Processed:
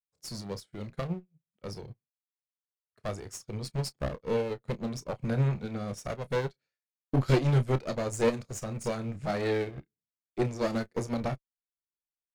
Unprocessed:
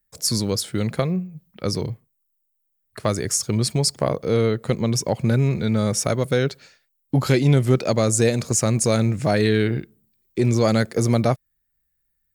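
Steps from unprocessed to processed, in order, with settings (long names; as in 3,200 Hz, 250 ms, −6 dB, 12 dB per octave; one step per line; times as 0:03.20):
low-pass filter 3,800 Hz 6 dB per octave
asymmetric clip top −27.5 dBFS
double-tracking delay 30 ms −9 dB
expander for the loud parts 2.5 to 1, over −42 dBFS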